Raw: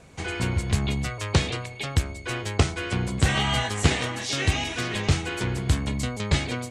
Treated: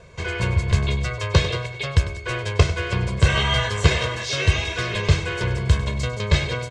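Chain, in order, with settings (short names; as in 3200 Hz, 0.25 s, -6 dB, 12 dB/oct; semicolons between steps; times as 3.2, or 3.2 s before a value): LPF 5800 Hz 12 dB/oct; comb 1.9 ms, depth 78%; feedback echo 99 ms, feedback 52%, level -14 dB; gain +1.5 dB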